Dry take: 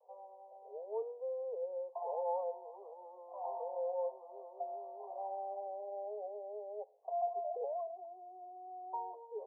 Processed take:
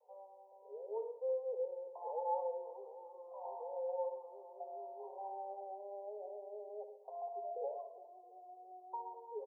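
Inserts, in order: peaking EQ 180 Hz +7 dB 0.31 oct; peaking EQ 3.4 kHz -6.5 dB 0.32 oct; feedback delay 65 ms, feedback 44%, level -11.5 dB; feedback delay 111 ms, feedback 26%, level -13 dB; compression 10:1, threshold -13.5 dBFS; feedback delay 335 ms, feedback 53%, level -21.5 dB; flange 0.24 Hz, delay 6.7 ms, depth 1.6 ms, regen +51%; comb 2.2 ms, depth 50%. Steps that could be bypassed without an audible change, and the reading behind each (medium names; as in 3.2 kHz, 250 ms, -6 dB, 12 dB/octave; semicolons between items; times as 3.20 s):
peaking EQ 180 Hz: input has nothing below 360 Hz; peaking EQ 3.4 kHz: input has nothing above 1.1 kHz; compression, threshold -13.5 dBFS: peak at its input -25.5 dBFS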